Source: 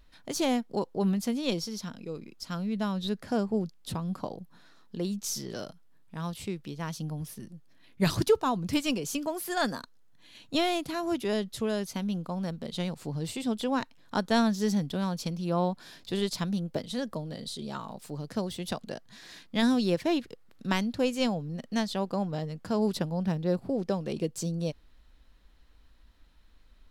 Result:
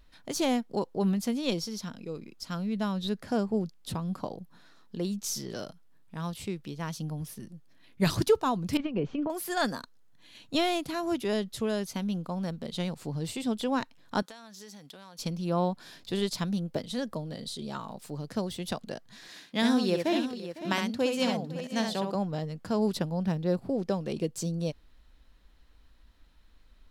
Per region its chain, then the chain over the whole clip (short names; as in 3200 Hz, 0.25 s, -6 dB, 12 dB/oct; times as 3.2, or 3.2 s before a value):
8.77–9.3 LPF 2800 Hz 24 dB/oct + tilt shelf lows +4 dB + negative-ratio compressor -29 dBFS, ratio -0.5
14.22–15.19 HPF 1000 Hz 6 dB/oct + compressor 12:1, threshold -43 dBFS
19.28–22.15 HPF 190 Hz 6 dB/oct + tapped delay 66/505/563 ms -5/-17.5/-11.5 dB
whole clip: dry